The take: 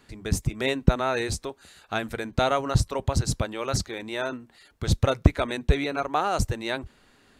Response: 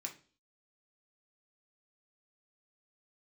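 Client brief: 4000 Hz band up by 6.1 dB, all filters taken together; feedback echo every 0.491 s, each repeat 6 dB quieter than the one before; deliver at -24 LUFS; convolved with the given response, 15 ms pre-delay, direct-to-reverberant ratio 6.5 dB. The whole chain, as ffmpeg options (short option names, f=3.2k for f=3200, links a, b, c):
-filter_complex "[0:a]equalizer=f=4k:t=o:g=7,aecho=1:1:491|982|1473|1964|2455|2946:0.501|0.251|0.125|0.0626|0.0313|0.0157,asplit=2[a][b];[1:a]atrim=start_sample=2205,adelay=15[c];[b][c]afir=irnorm=-1:irlink=0,volume=-4.5dB[d];[a][d]amix=inputs=2:normalize=0,volume=0.5dB"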